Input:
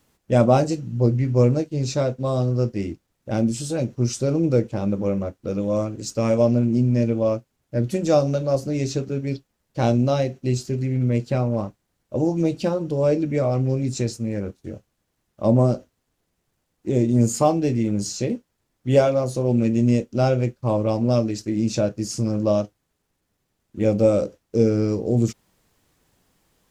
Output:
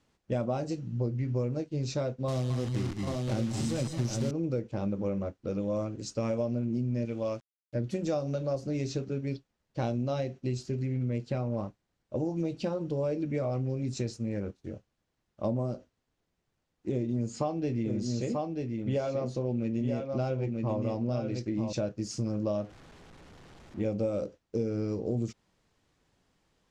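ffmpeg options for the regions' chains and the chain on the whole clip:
ffmpeg -i in.wav -filter_complex "[0:a]asettb=1/sr,asplit=3[link_01][link_02][link_03];[link_01]atrim=end=2.284[link_04];[link_02]atrim=start=2.28:end=4.31,asetpts=PTS-STARTPTS,afade=type=in:duration=0.004:curve=qsin,afade=type=out:start_time=2.026:duration=0.004:curve=qsin,acrusher=bits=6:dc=4:mix=0:aa=0.000001,bass=frequency=250:gain=4,treble=frequency=4000:gain=6,aecho=1:1:153|220|221|747|790:0.158|0.447|0.335|0.211|0.531,atrim=end_sample=89523[link_05];[link_03]atrim=start=4.306[link_06];[link_04][link_05]acrossfade=duration=0.004:curve1=hsin:curve2=qsin[link_07];[link_07][link_06]acrossfade=duration=0.004:curve1=qsin:curve2=hsin,asettb=1/sr,asplit=3[link_08][link_09][link_10];[link_08]atrim=end=7.054[link_11];[link_09]atrim=start=7.05:end=7.75,asetpts=PTS-STARTPTS,afade=type=in:duration=0.004:curve=qsin,afade=type=out:start_time=0.696:duration=0.004:curve=qsin,tiltshelf=frequency=1400:gain=-5.5,aeval=exprs='val(0)*gte(abs(val(0)),0.00355)':channel_layout=same[link_12];[link_10]atrim=start=7.746[link_13];[link_11][link_12]acrossfade=duration=0.004:curve1=hsin:curve2=qsin[link_14];[link_14][link_13]acrossfade=duration=0.004:curve1=qsin:curve2=hsin,asettb=1/sr,asplit=3[link_15][link_16][link_17];[link_15]atrim=end=16.924[link_18];[link_16]atrim=start=16.92:end=21.73,asetpts=PTS-STARTPTS,afade=type=in:duration=0.004:curve=qsin,afade=type=out:start_time=4.806:duration=0.004:curve=qsin,lowpass=6100,aecho=1:1:937:0.473,atrim=end_sample=212121[link_19];[link_17]atrim=start=21.726[link_20];[link_18][link_19]acrossfade=duration=0.004:curve1=hsin:curve2=qsin[link_21];[link_21][link_20]acrossfade=duration=0.004:curve1=qsin:curve2=hsin,asettb=1/sr,asplit=3[link_22][link_23][link_24];[link_22]atrim=end=22.574[link_25];[link_23]atrim=start=22.57:end=23.81,asetpts=PTS-STARTPTS,afade=type=in:duration=0.004:curve=qsin,afade=type=out:start_time=1.236:duration=0.004:curve=qsin,aeval=exprs='val(0)+0.5*0.0112*sgn(val(0))':channel_layout=same,highshelf=frequency=2800:gain=-8[link_26];[link_24]atrim=start=23.806[link_27];[link_25][link_26]acrossfade=duration=0.004:curve1=hsin:curve2=qsin[link_28];[link_28][link_27]acrossfade=duration=0.004:curve1=qsin:curve2=hsin,lowpass=6100,acompressor=threshold=-21dB:ratio=6,volume=-6dB" out.wav

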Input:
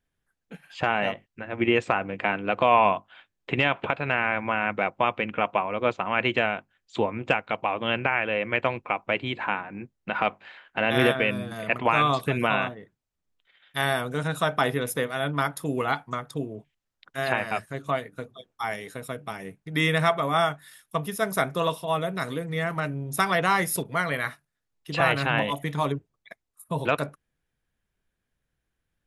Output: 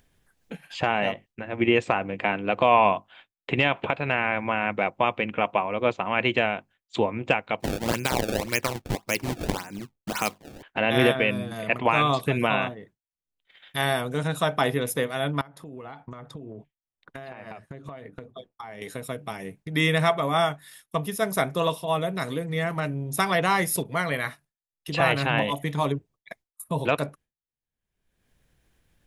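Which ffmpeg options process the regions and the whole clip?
ffmpeg -i in.wav -filter_complex "[0:a]asettb=1/sr,asplit=3[link_01][link_02][link_03];[link_01]atrim=end=7.604[link_04];[link_02]atrim=start=7.6:end=10.63,asetpts=PTS-STARTPTS,afade=type=in:duration=0.004:curve=qsin,afade=type=out:start_time=3.026:duration=0.004:curve=qsin,lowpass=9300,equalizer=frequency=660:width_type=o:width=0.8:gain=-6.5,acrusher=samples=25:mix=1:aa=0.000001:lfo=1:lforange=40:lforate=1.8[link_05];[link_03]atrim=start=10.626[link_06];[link_04][link_05]acrossfade=duration=0.004:curve1=hsin:curve2=qsin[link_07];[link_07][link_06]acrossfade=duration=0.004:curve1=qsin:curve2=hsin,asettb=1/sr,asplit=3[link_08][link_09][link_10];[link_08]atrim=end=15.414[link_11];[link_09]atrim=start=15.41:end=18.82,asetpts=PTS-STARTPTS,afade=type=in:duration=0.004:curve=qsin,afade=type=out:start_time=3.406:duration=0.004:curve=qsin,lowpass=frequency=1600:poles=1,acompressor=threshold=-41dB:ratio=20:attack=3.2:release=140:knee=1:detection=peak[link_12];[link_10]atrim=start=18.816[link_13];[link_11][link_12]acrossfade=duration=0.004:curve1=hsin:curve2=qsin[link_14];[link_14][link_13]acrossfade=duration=0.004:curve1=qsin:curve2=hsin,agate=range=-33dB:threshold=-47dB:ratio=3:detection=peak,equalizer=frequency=1400:width_type=o:width=0.63:gain=-4.5,acompressor=mode=upward:threshold=-33dB:ratio=2.5,volume=1.5dB" out.wav

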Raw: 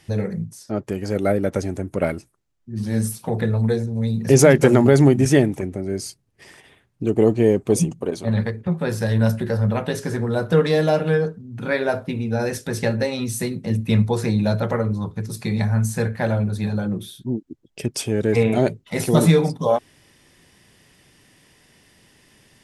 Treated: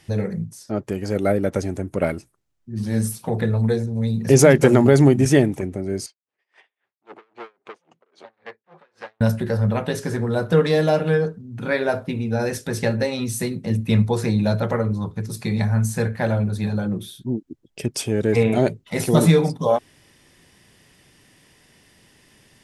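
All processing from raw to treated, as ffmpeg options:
ffmpeg -i in.wav -filter_complex "[0:a]asettb=1/sr,asplit=3[link_01][link_02][link_03];[link_01]atrim=end=6.064[link_04];[link_02]atrim=start=6.06:end=9.21,asetpts=PTS-STARTPTS,afade=type=in:duration=0.004:curve=qsin,afade=type=out:start_time=3.146:duration=0.004:curve=qsin,volume=23.5dB,asoftclip=hard,volume=-23.5dB,highpass=670,lowpass=3100,aeval=exprs='val(0)*pow(10,-35*(0.5-0.5*cos(2*PI*3.7*n/s))/20)':channel_layout=same[link_05];[link_03]atrim=start=9.206[link_06];[link_04][link_05]acrossfade=duration=0.004:curve1=hsin:curve2=qsin[link_07];[link_07][link_06]acrossfade=duration=0.004:curve1=qsin:curve2=hsin" out.wav

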